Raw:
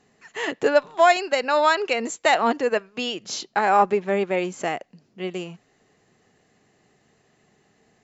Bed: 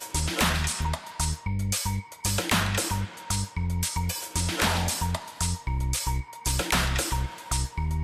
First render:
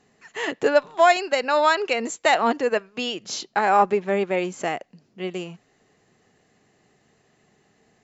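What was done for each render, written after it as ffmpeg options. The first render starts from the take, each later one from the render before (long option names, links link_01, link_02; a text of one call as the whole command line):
ffmpeg -i in.wav -af anull out.wav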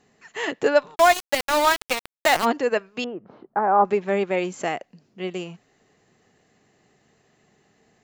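ffmpeg -i in.wav -filter_complex "[0:a]asplit=3[link_01][link_02][link_03];[link_01]afade=type=out:start_time=0.94:duration=0.02[link_04];[link_02]aeval=exprs='val(0)*gte(abs(val(0)),0.106)':channel_layout=same,afade=type=in:start_time=0.94:duration=0.02,afade=type=out:start_time=2.44:duration=0.02[link_05];[link_03]afade=type=in:start_time=2.44:duration=0.02[link_06];[link_04][link_05][link_06]amix=inputs=3:normalize=0,asettb=1/sr,asplit=3[link_07][link_08][link_09];[link_07]atrim=end=3.044[link_10];[link_08]atrim=start=3.04:end=3.85,asetpts=PTS-STARTPTS,afade=type=in:duration=0.004:curve=qsin,afade=type=out:start_time=0.806:duration=0.004:curve=qsin,lowpass=frequency=1300:width=0.5412,lowpass=frequency=1300:width=1.3066[link_11];[link_09]atrim=start=3.846[link_12];[link_10][link_11]acrossfade=duration=0.004:curve1=hsin:curve2=qsin[link_13];[link_13][link_12]acrossfade=duration=0.004:curve1=qsin:curve2=hsin" out.wav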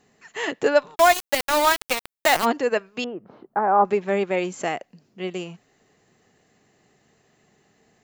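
ffmpeg -i in.wav -af "highshelf=frequency=11000:gain=7" out.wav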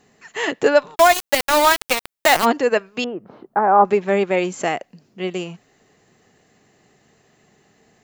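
ffmpeg -i in.wav -af "volume=4.5dB,alimiter=limit=-3dB:level=0:latency=1" out.wav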